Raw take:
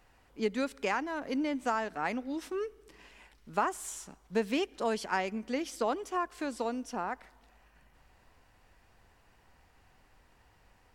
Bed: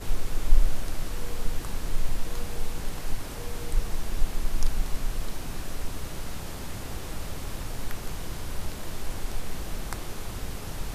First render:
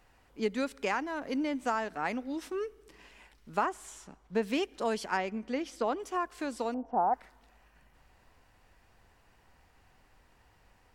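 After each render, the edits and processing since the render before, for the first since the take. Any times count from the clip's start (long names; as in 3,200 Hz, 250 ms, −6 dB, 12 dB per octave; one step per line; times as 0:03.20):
0:03.66–0:04.43: low-pass filter 3,300 Hz 6 dB per octave
0:05.17–0:06.00: low-pass filter 3,800 Hz 6 dB per octave
0:06.74–0:07.14: low-pass with resonance 790 Hz, resonance Q 4.2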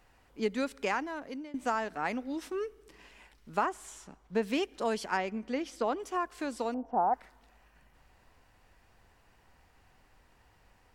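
0:00.98–0:01.54: fade out, to −20 dB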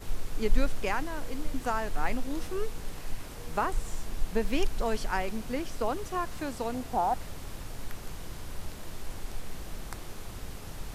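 mix in bed −6 dB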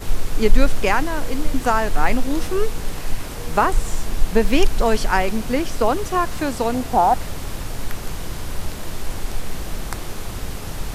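level +12 dB
brickwall limiter −1 dBFS, peak gain reduction 2.5 dB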